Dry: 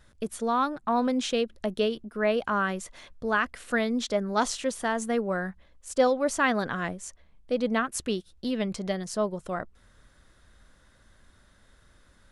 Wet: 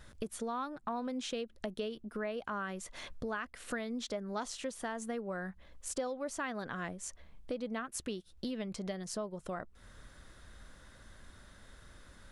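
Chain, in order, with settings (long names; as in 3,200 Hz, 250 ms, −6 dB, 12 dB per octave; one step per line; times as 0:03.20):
downward compressor 4 to 1, threshold −42 dBFS, peak gain reduction 20.5 dB
level +3.5 dB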